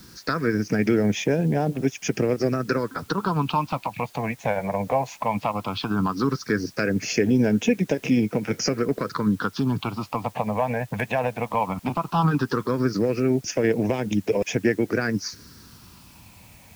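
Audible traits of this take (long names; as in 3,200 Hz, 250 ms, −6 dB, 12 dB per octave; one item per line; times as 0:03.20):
phaser sweep stages 6, 0.16 Hz, lowest notch 340–1,200 Hz
a quantiser's noise floor 10 bits, dither triangular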